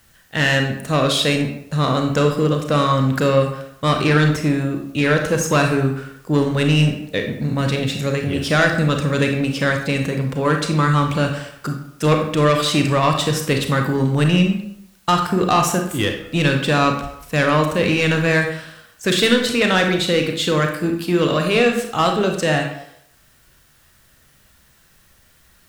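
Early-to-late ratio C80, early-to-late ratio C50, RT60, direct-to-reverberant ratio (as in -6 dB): 9.5 dB, 6.0 dB, 0.75 s, 3.5 dB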